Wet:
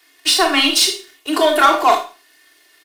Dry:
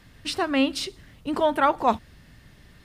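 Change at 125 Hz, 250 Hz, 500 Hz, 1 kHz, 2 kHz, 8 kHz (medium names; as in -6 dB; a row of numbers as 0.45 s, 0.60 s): no reading, +3.5 dB, +7.5 dB, +9.0 dB, +12.0 dB, +19.5 dB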